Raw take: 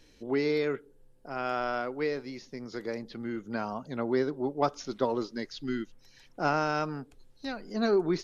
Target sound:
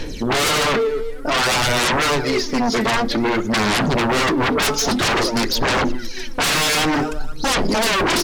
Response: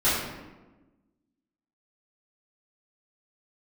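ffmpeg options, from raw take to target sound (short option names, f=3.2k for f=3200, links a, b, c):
-filter_complex "[0:a]volume=26dB,asoftclip=hard,volume=-26dB,aecho=1:1:242|484:0.0944|0.0302,aphaser=in_gain=1:out_gain=1:delay=4.6:decay=0.67:speed=0.53:type=sinusoidal,bandreject=f=50:t=h:w=6,bandreject=f=100:t=h:w=6,bandreject=f=150:t=h:w=6,bandreject=f=200:t=h:w=6,bandreject=f=250:t=h:w=6,bandreject=f=300:t=h:w=6,bandreject=f=350:t=h:w=6,aeval=exprs='0.178*sin(PI/2*10*val(0)/0.178)':c=same,asplit=2[a][b];[1:a]atrim=start_sample=2205,atrim=end_sample=6174[c];[b][c]afir=irnorm=-1:irlink=0,volume=-34dB[d];[a][d]amix=inputs=2:normalize=0"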